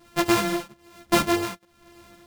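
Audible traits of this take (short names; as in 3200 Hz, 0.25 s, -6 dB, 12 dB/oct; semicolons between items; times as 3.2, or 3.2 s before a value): a buzz of ramps at a fixed pitch in blocks of 128 samples; tremolo triangle 1.1 Hz, depth 100%; a shimmering, thickened sound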